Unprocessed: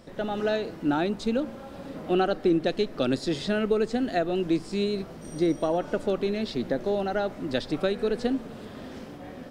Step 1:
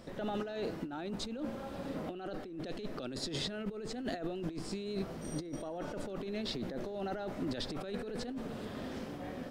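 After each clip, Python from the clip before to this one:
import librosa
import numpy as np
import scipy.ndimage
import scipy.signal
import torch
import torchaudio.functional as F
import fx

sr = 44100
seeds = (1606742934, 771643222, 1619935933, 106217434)

y = fx.over_compress(x, sr, threshold_db=-32.0, ratio=-1.0)
y = y * librosa.db_to_amplitude(-6.5)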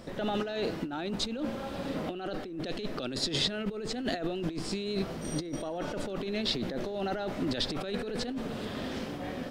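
y = fx.dynamic_eq(x, sr, hz=3400.0, q=0.81, threshold_db=-57.0, ratio=4.0, max_db=5)
y = y * librosa.db_to_amplitude(5.0)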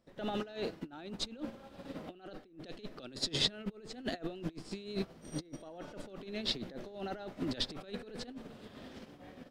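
y = fx.upward_expand(x, sr, threshold_db=-44.0, expansion=2.5)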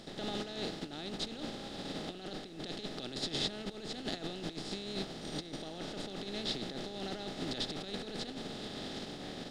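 y = fx.bin_compress(x, sr, power=0.4)
y = y * librosa.db_to_amplitude(-7.0)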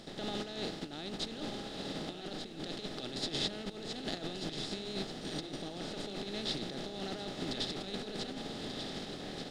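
y = x + 10.0 ** (-8.0 / 20.0) * np.pad(x, (int(1187 * sr / 1000.0), 0))[:len(x)]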